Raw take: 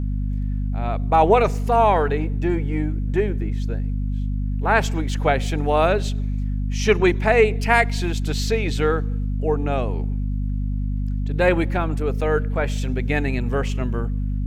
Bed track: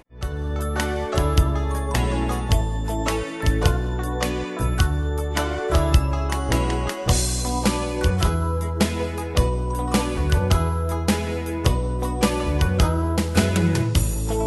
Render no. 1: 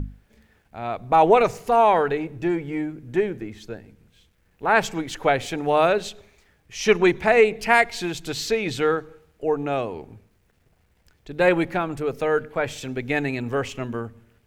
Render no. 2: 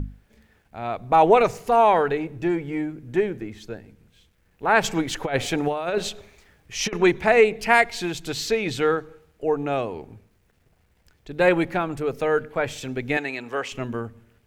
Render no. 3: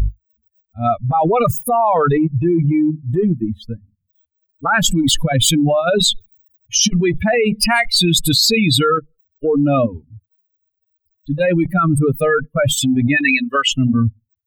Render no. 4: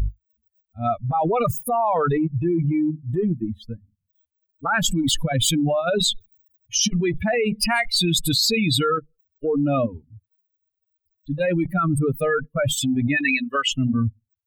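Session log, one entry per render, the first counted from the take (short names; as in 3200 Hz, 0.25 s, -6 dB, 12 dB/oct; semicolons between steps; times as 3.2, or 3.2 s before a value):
notches 50/100/150/200/250 Hz
4.84–6.93 negative-ratio compressor -22 dBFS, ratio -0.5; 13.17–13.72 weighting filter A
per-bin expansion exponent 3; fast leveller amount 100%
gain -6 dB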